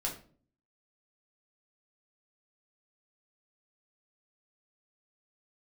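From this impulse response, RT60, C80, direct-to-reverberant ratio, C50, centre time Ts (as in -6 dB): 0.45 s, 14.0 dB, -2.5 dB, 9.0 dB, 21 ms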